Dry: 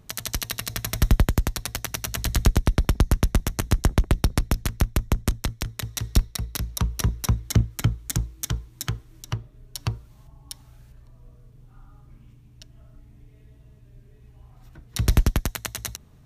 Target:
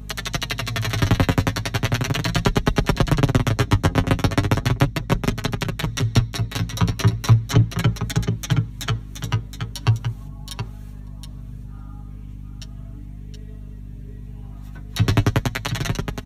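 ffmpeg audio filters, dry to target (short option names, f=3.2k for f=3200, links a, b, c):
-filter_complex "[0:a]highpass=66,bandreject=f=4.9k:w=9.3,aecho=1:1:7.3:0.85,acrossover=split=120|1300|4900[a][b][c][d];[d]acompressor=threshold=-45dB:ratio=8[e];[a][b][c][e]amix=inputs=4:normalize=0,aecho=1:1:722:0.422,apsyclip=13dB,flanger=delay=4.7:depth=6.6:regen=33:speed=0.37:shape=sinusoidal,aeval=exprs='val(0)+0.0316*(sin(2*PI*50*n/s)+sin(2*PI*2*50*n/s)/2+sin(2*PI*3*50*n/s)/3+sin(2*PI*4*50*n/s)/4+sin(2*PI*5*50*n/s)/5)':c=same,volume=-4dB"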